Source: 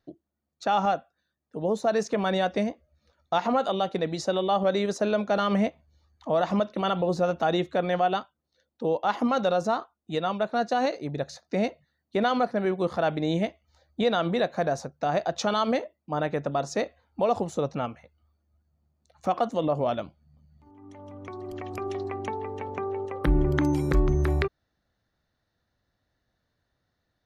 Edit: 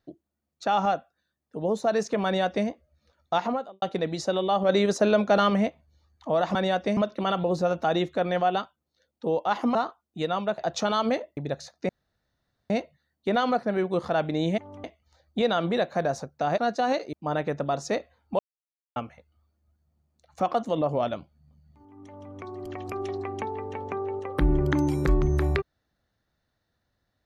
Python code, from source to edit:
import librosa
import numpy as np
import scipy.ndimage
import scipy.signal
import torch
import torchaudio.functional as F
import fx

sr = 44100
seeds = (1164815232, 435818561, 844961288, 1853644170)

y = fx.studio_fade_out(x, sr, start_s=3.36, length_s=0.46)
y = fx.edit(y, sr, fx.duplicate(start_s=2.25, length_s=0.42, to_s=6.55),
    fx.clip_gain(start_s=4.69, length_s=0.81, db=4.0),
    fx.cut(start_s=9.33, length_s=0.35),
    fx.swap(start_s=10.51, length_s=0.55, other_s=15.2, other_length_s=0.79),
    fx.insert_room_tone(at_s=11.58, length_s=0.81),
    fx.silence(start_s=17.25, length_s=0.57),
    fx.duplicate(start_s=20.92, length_s=0.26, to_s=13.46), tone=tone)